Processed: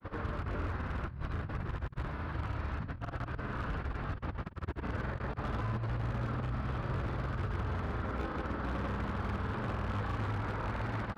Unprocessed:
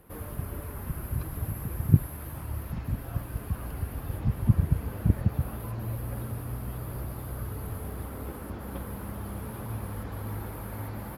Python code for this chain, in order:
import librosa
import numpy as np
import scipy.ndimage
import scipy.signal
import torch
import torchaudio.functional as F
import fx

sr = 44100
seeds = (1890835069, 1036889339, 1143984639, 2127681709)

y = scipy.signal.sosfilt(scipy.signal.butter(4, 4600.0, 'lowpass', fs=sr, output='sos'), x)
y = fx.peak_eq(y, sr, hz=1400.0, db=7.5, octaves=1.0)
y = fx.over_compress(y, sr, threshold_db=-34.0, ratio=-0.5)
y = 10.0 ** (-27.5 / 20.0) * (np.abs((y / 10.0 ** (-27.5 / 20.0) + 3.0) % 4.0 - 2.0) - 1.0)
y = fx.granulator(y, sr, seeds[0], grain_ms=100.0, per_s=20.0, spray_ms=100.0, spread_st=0)